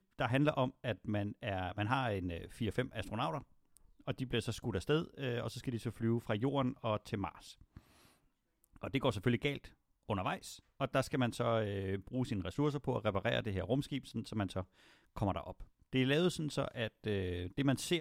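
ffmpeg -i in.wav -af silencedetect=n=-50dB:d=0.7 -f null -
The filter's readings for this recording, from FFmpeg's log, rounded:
silence_start: 7.78
silence_end: 8.64 | silence_duration: 0.86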